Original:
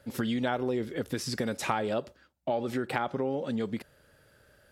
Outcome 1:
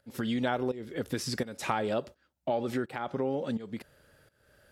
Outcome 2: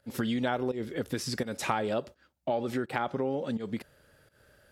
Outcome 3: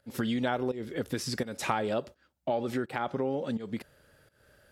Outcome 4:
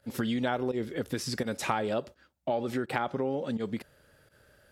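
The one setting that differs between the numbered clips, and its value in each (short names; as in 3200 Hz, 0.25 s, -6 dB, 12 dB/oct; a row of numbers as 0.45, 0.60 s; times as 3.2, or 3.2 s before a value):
pump, release: 454, 170, 266, 82 ms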